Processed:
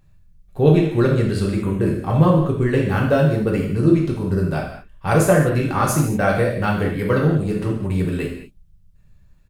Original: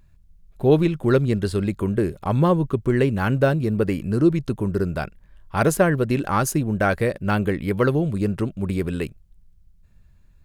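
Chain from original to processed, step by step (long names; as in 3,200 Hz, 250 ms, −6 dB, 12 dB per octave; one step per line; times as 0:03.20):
tempo change 1.1×
reverb whose tail is shaped and stops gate 260 ms falling, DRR −2.5 dB
level −2 dB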